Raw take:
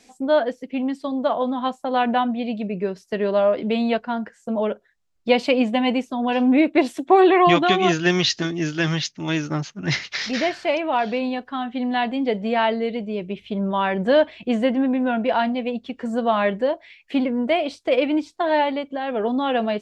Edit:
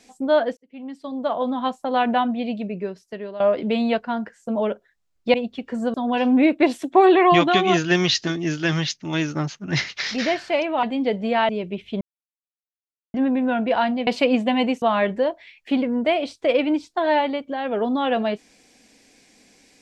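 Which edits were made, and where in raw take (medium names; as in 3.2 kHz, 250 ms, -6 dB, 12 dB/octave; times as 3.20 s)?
0.57–1.53 s: fade in
2.47–3.40 s: fade out linear, to -16 dB
5.34–6.09 s: swap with 15.65–16.25 s
10.98–12.04 s: delete
12.70–13.07 s: delete
13.59–14.72 s: mute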